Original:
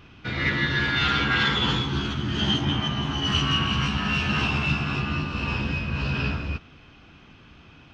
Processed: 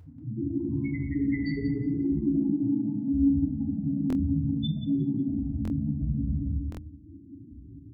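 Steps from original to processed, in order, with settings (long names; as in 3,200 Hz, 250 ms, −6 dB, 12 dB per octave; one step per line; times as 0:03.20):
reverb reduction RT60 0.86 s
high-pass filter 56 Hz 12 dB per octave
low-shelf EQ 430 Hz +11.5 dB
hum removal 302.3 Hz, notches 4
in parallel at 0 dB: downward compressor 6 to 1, threshold −25 dBFS, peak gain reduction 13 dB
on the sum: brickwall limiter −13 dBFS, peak gain reduction 9.5 dB
formants moved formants +5 semitones
spectral peaks only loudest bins 1
tape delay 182 ms, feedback 38%, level −3.5 dB, low-pass 2,000 Hz
feedback delay network reverb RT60 0.83 s, low-frequency decay 1.05×, high-frequency decay 0.45×, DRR −1 dB
buffer that repeats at 0:04.08/0:05.63/0:06.70, samples 1,024, times 2
level −3.5 dB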